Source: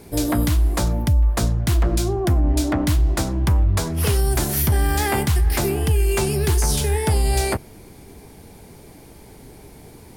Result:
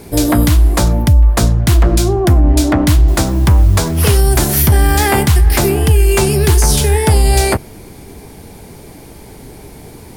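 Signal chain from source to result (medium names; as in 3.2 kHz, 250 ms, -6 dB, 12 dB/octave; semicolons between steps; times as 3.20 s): 3.08–4.04 s: word length cut 8-bit, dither triangular; trim +8.5 dB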